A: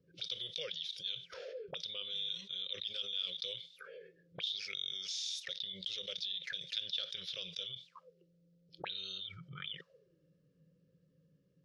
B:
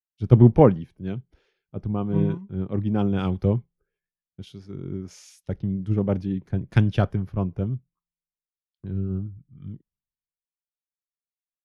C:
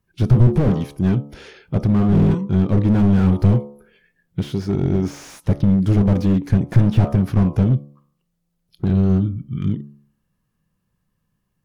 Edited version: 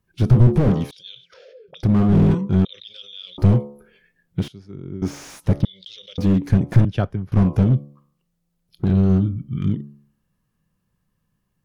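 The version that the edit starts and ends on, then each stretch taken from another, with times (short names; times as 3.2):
C
0.91–1.83 from A
2.65–3.38 from A
4.48–5.02 from B
5.65–6.18 from A
6.85–7.32 from B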